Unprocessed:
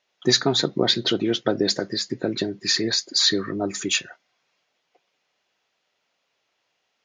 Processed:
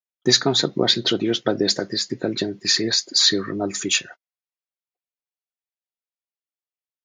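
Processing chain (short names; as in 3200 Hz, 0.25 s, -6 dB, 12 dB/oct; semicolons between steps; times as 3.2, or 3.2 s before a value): gate -39 dBFS, range -34 dB; high shelf 5200 Hz +4 dB; gain +1 dB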